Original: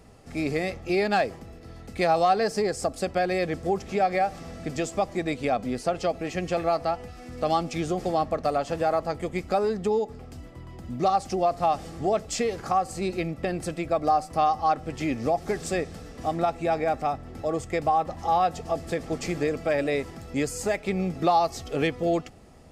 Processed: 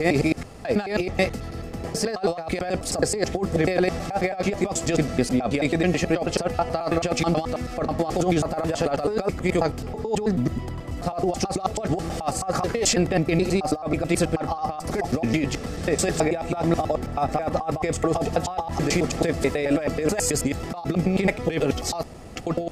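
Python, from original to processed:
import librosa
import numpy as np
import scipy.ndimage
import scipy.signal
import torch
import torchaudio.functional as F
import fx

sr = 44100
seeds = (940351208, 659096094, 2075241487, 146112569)

y = fx.block_reorder(x, sr, ms=108.0, group=6)
y = fx.over_compress(y, sr, threshold_db=-28.0, ratio=-0.5)
y = F.gain(torch.from_numpy(y), 6.5).numpy()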